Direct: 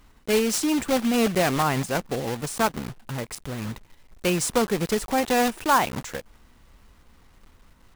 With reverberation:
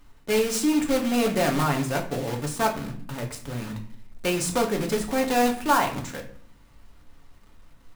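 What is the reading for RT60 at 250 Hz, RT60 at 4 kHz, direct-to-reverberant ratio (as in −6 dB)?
0.80 s, 0.35 s, 1.5 dB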